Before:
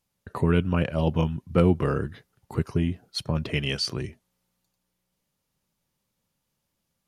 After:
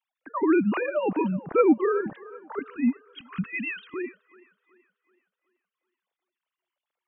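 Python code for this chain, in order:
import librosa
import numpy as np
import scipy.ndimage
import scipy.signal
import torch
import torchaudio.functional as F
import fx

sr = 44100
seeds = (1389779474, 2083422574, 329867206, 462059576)

p1 = fx.sine_speech(x, sr)
p2 = fx.ellip_bandstop(p1, sr, low_hz=260.0, high_hz=1200.0, order=3, stop_db=40, at=(2.59, 3.94))
y = p2 + fx.echo_wet_bandpass(p2, sr, ms=377, feedback_pct=43, hz=890.0, wet_db=-17.0, dry=0)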